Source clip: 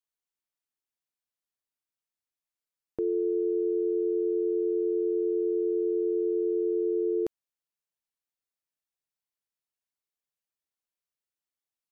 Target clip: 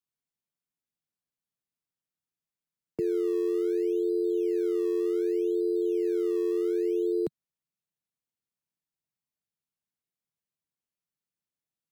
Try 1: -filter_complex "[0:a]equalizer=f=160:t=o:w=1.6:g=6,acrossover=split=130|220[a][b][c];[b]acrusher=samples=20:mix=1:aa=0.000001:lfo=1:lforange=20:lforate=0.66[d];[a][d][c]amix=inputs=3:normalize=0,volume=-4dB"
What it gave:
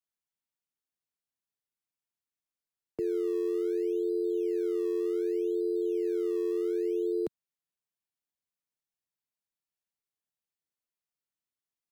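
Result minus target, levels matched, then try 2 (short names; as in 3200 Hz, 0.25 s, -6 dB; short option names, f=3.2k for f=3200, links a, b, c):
125 Hz band -4.5 dB
-filter_complex "[0:a]equalizer=f=160:t=o:w=1.6:g=14.5,acrossover=split=130|220[a][b][c];[b]acrusher=samples=20:mix=1:aa=0.000001:lfo=1:lforange=20:lforate=0.66[d];[a][d][c]amix=inputs=3:normalize=0,volume=-4dB"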